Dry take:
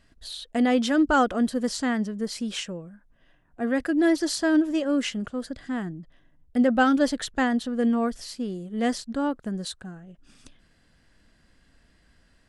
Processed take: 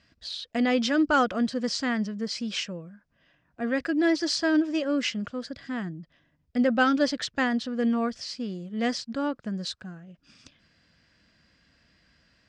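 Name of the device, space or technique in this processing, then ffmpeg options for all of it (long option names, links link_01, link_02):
car door speaker: -af "highpass=81,equalizer=frequency=260:width_type=q:width=4:gain=-3,equalizer=frequency=400:width_type=q:width=4:gain=-6,equalizer=frequency=810:width_type=q:width=4:gain=-5,equalizer=frequency=2400:width_type=q:width=4:gain=4,equalizer=frequency=5000:width_type=q:width=4:gain=6,lowpass=frequency=6600:width=0.5412,lowpass=frequency=6600:width=1.3066"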